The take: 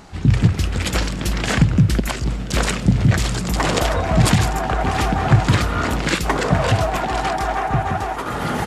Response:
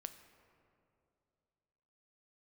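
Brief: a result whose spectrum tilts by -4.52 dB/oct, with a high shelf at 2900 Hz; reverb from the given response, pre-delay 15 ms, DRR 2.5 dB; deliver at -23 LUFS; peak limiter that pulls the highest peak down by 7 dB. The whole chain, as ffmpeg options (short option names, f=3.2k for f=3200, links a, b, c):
-filter_complex "[0:a]highshelf=f=2.9k:g=5.5,alimiter=limit=-9.5dB:level=0:latency=1,asplit=2[a][b];[1:a]atrim=start_sample=2205,adelay=15[c];[b][c]afir=irnorm=-1:irlink=0,volume=1.5dB[d];[a][d]amix=inputs=2:normalize=0,volume=-4.5dB"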